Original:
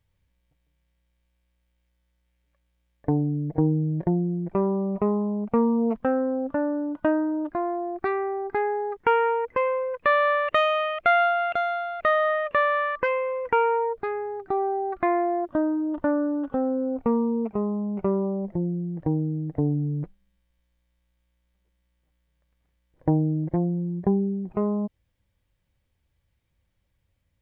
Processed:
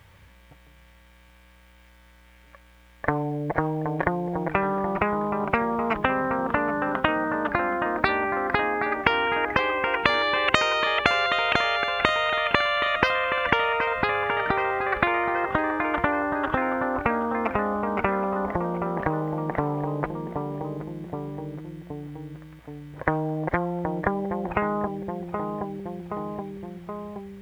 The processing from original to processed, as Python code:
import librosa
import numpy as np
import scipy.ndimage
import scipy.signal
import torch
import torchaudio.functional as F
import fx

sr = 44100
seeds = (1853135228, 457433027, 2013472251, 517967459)

y = scipy.signal.sosfilt(scipy.signal.butter(2, 53.0, 'highpass', fs=sr, output='sos'), x)
y = fx.peak_eq(y, sr, hz=1300.0, db=9.5, octaves=2.2)
y = fx.echo_feedback(y, sr, ms=773, feedback_pct=48, wet_db=-17.5)
y = fx.spectral_comp(y, sr, ratio=4.0)